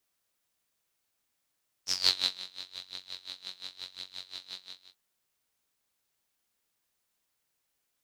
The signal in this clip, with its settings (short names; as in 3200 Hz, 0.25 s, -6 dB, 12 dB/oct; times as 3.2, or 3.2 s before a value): synth patch with tremolo F#2, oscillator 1 saw, oscillator 2 saw, detune 17 cents, noise -18 dB, filter bandpass, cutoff 4000 Hz, Q 11, filter envelope 0.5 oct, filter sustain 0%, attack 0.114 s, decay 0.45 s, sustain -20 dB, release 0.42 s, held 2.68 s, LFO 5.7 Hz, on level 20 dB